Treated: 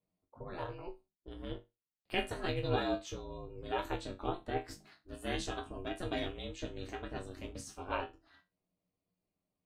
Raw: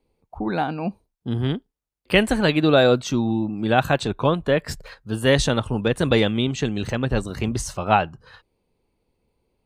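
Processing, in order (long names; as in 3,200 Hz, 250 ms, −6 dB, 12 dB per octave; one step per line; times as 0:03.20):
resonators tuned to a chord G2 fifth, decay 0.22 s
ring modulation 180 Hz
level −4.5 dB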